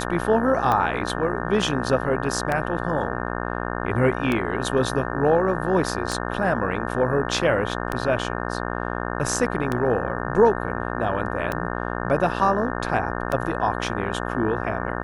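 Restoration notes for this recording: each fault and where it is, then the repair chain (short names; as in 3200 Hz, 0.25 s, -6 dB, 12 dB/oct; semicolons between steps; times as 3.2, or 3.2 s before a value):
buzz 60 Hz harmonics 30 -28 dBFS
tick 33 1/3 rpm -11 dBFS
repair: de-click; de-hum 60 Hz, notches 30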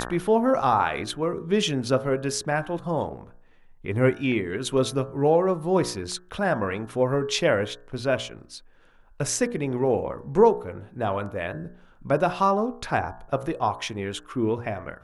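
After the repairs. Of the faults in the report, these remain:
none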